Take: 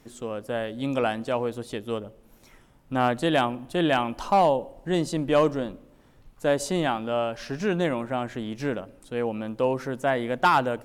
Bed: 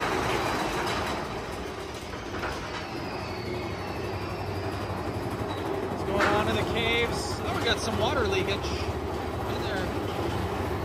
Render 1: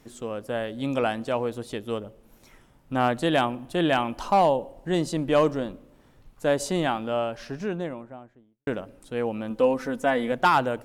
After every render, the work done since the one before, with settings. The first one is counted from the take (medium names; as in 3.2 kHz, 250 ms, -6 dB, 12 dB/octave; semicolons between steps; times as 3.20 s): 6.99–8.67 s: studio fade out; 9.50–10.32 s: comb 4 ms, depth 61%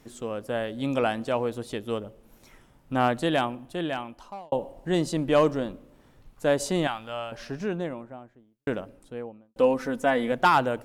3.03–4.52 s: fade out; 6.87–7.32 s: peaking EQ 300 Hz -15 dB 2.3 oct; 8.74–9.56 s: studio fade out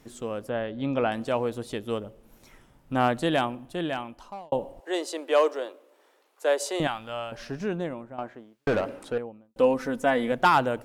0.49–1.12 s: distance through air 200 m; 4.80–6.80 s: steep high-pass 370 Hz; 8.18–9.18 s: overdrive pedal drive 25 dB, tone 2.7 kHz, clips at -16 dBFS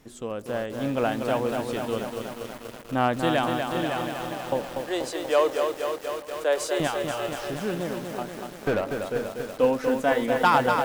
shuffle delay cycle 853 ms, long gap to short 1.5:1, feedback 31%, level -20 dB; bit-crushed delay 241 ms, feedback 80%, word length 7-bit, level -5 dB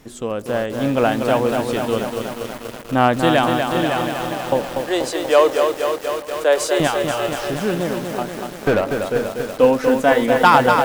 trim +8 dB; peak limiter -2 dBFS, peak gain reduction 1 dB